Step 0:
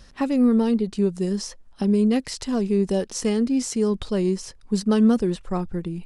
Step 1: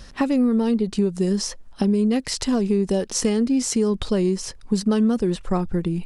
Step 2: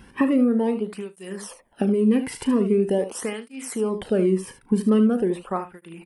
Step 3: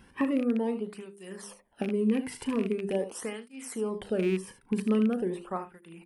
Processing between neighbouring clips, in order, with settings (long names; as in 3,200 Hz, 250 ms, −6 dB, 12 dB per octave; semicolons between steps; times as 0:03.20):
downward compressor 4 to 1, threshold −24 dBFS, peak gain reduction 9.5 dB; level +6.5 dB
flat-topped bell 5,200 Hz −15 dB 1.2 octaves; ambience of single reflections 37 ms −12.5 dB, 75 ms −11 dB; through-zero flanger with one copy inverted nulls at 0.43 Hz, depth 1.7 ms; level +2 dB
loose part that buzzes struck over −23 dBFS, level −22 dBFS; mains-hum notches 50/100/150/200/250/300/350/400 Hz; level −7 dB